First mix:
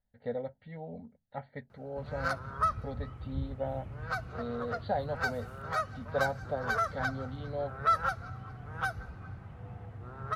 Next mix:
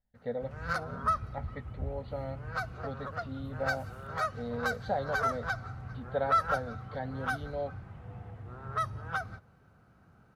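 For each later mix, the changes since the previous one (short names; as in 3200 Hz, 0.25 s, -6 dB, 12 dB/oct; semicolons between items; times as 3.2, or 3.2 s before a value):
background: entry -1.55 s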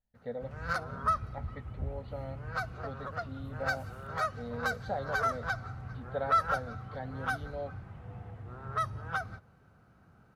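speech -3.5 dB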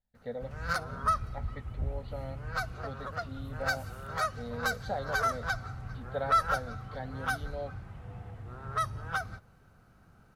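background: remove HPF 66 Hz; master: add high shelf 3700 Hz +9 dB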